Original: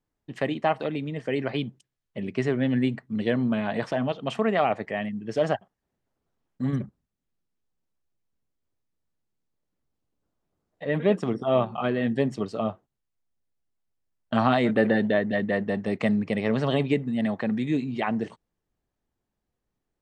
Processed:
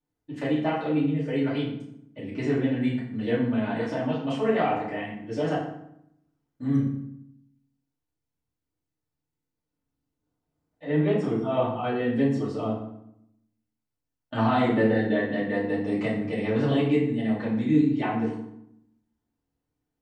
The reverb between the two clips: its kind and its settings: FDN reverb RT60 0.75 s, low-frequency decay 1.4×, high-frequency decay 0.7×, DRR -9 dB; gain -11 dB

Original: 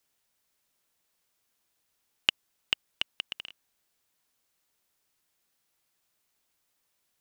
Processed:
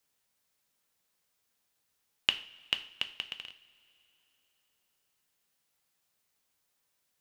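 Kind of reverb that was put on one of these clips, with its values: two-slope reverb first 0.43 s, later 3.5 s, from -22 dB, DRR 7.5 dB; gain -2.5 dB

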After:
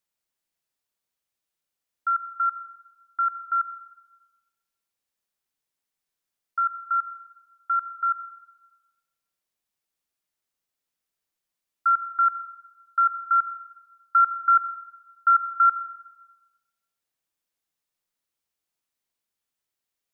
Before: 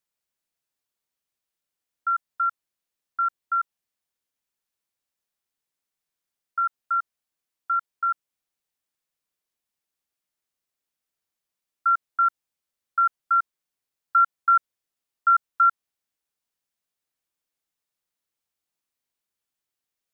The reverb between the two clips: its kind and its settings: digital reverb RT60 1.1 s, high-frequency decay 1×, pre-delay 30 ms, DRR 10.5 dB

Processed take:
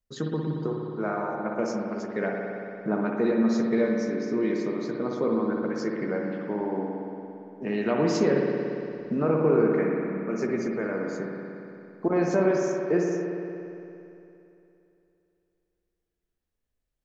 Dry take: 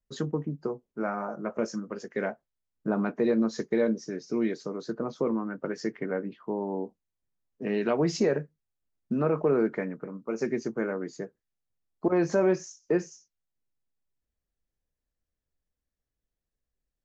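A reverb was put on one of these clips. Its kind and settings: spring tank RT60 2.9 s, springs 57 ms, chirp 60 ms, DRR -0.5 dB

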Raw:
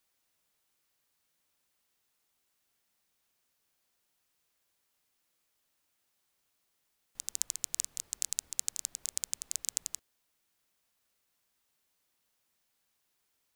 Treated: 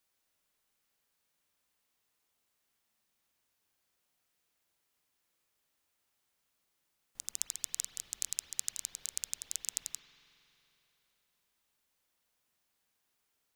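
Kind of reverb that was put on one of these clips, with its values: spring tank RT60 3.2 s, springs 45 ms, chirp 65 ms, DRR 4 dB; gain -2.5 dB

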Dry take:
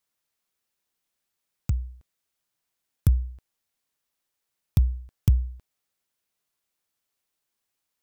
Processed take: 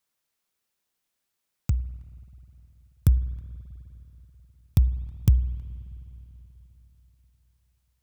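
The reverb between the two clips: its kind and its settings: spring tank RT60 3.8 s, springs 49/53 ms, chirp 55 ms, DRR 15.5 dB; gain +1 dB

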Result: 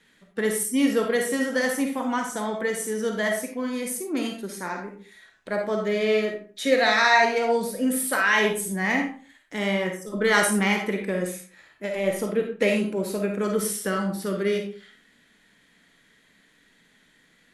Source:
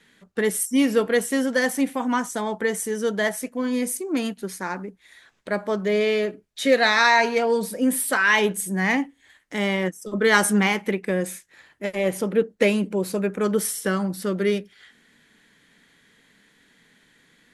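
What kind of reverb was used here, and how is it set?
digital reverb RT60 0.41 s, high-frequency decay 0.7×, pre-delay 10 ms, DRR 2 dB; gain -3.5 dB

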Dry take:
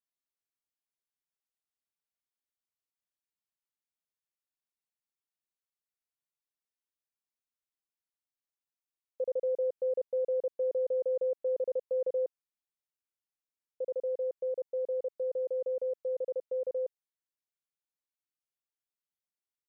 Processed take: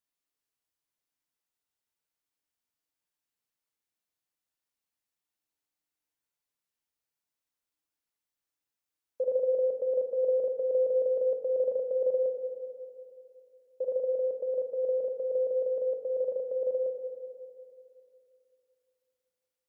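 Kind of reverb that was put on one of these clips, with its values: FDN reverb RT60 2.7 s, high-frequency decay 0.6×, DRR 3.5 dB; gain +3 dB

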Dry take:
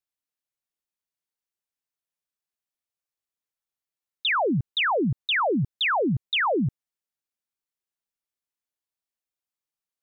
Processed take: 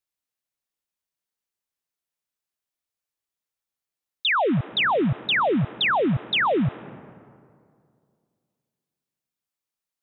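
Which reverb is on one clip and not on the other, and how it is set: digital reverb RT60 2.3 s, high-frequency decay 0.45×, pre-delay 95 ms, DRR 18 dB; gain +2 dB

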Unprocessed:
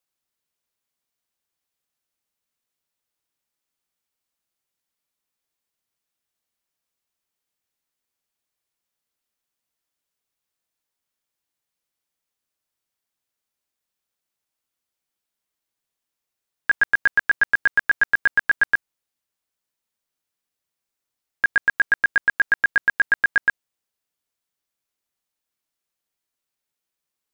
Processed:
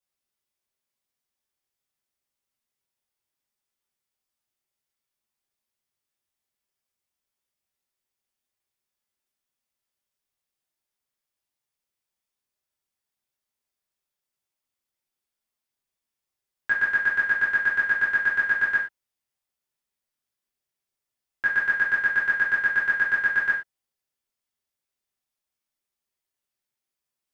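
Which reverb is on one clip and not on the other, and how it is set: non-linear reverb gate 0.14 s falling, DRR -6 dB; gain -10 dB

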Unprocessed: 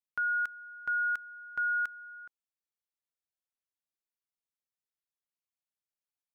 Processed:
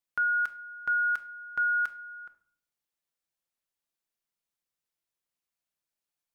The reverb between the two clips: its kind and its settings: shoebox room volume 740 m³, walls furnished, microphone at 0.82 m; gain +4 dB

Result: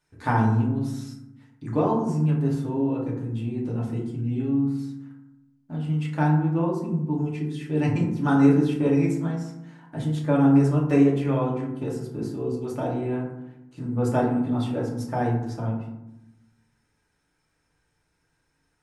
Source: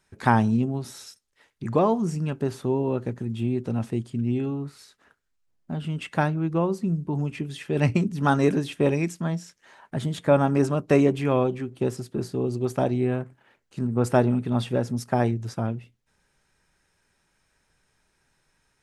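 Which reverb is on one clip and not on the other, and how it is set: FDN reverb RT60 0.86 s, low-frequency decay 1.6×, high-frequency decay 0.4×, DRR -4 dB; gain -8.5 dB

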